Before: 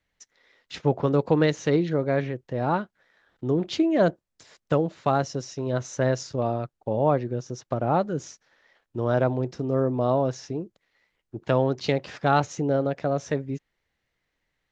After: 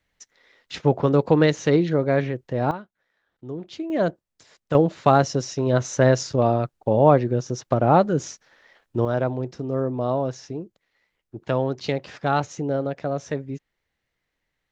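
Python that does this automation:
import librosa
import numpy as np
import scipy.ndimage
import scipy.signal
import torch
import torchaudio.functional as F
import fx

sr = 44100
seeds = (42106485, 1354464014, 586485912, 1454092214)

y = fx.gain(x, sr, db=fx.steps((0.0, 3.5), (2.71, -9.0), (3.9, -1.5), (4.75, 6.5), (9.05, -1.0)))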